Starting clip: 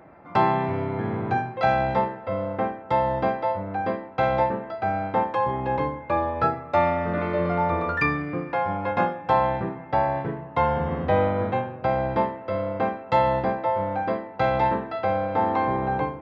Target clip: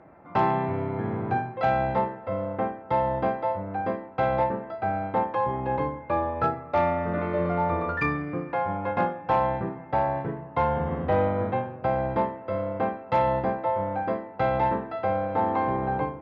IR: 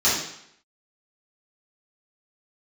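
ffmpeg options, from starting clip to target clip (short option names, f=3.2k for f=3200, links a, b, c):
-af "aeval=exprs='0.398*(cos(1*acos(clip(val(0)/0.398,-1,1)))-cos(1*PI/2))+0.0562*(cos(5*acos(clip(val(0)/0.398,-1,1)))-cos(5*PI/2))+0.0355*(cos(7*acos(clip(val(0)/0.398,-1,1)))-cos(7*PI/2))':c=same,asoftclip=type=tanh:threshold=-7.5dB,aemphasis=mode=reproduction:type=75fm,volume=-3.5dB"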